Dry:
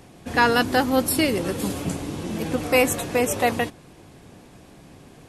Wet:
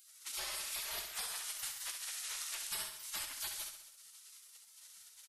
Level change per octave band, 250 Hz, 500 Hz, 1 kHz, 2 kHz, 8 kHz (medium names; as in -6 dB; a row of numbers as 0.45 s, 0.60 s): under -40 dB, -36.5 dB, -27.5 dB, -21.5 dB, -8.0 dB